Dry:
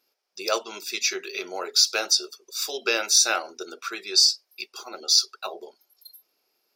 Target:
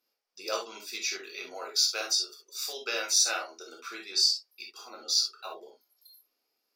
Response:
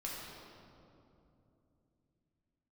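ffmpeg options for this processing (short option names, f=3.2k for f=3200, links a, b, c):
-filter_complex "[0:a]asettb=1/sr,asplit=3[a][b][c];[a]atrim=end=1.514[d];[b]atrim=start=1.51:end=3.72,asetpts=PTS-STARTPTS,afade=t=in:d=0.004:c=qsin,afade=t=out:st=2.206:d=0.004:c=qsin,bass=f=250:g=-11,treble=f=4k:g=2[e];[c]atrim=start=3.716[f];[d][e]acrossfade=d=0.004:c1=hsin:c2=qsin[g];[g][f]acrossfade=d=0.004:c1=qsin:c2=hsin[h];[1:a]atrim=start_sample=2205,atrim=end_sample=3087,asetrate=40131,aresample=44100[i];[h][i]afir=irnorm=-1:irlink=0,volume=-5dB"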